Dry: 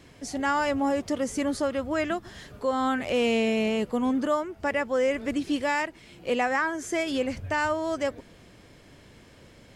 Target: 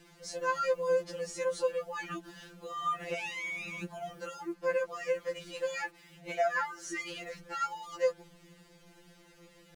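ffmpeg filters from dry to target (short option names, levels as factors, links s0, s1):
-af "acrusher=bits=8:mix=0:aa=0.5,asetrate=40440,aresample=44100,atempo=1.09051,afftfilt=real='re*2.83*eq(mod(b,8),0)':imag='im*2.83*eq(mod(b,8),0)':win_size=2048:overlap=0.75,volume=0.668"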